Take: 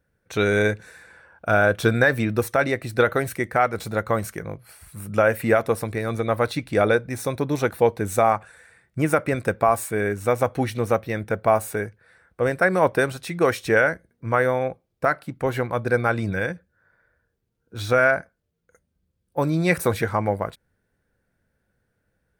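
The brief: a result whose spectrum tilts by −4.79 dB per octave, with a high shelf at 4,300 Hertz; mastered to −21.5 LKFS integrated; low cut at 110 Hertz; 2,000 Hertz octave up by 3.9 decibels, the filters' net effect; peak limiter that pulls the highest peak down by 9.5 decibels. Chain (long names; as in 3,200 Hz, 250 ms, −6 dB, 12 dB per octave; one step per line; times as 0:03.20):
high-pass filter 110 Hz
parametric band 2,000 Hz +6.5 dB
high-shelf EQ 4,300 Hz −6 dB
level +3 dB
brickwall limiter −7.5 dBFS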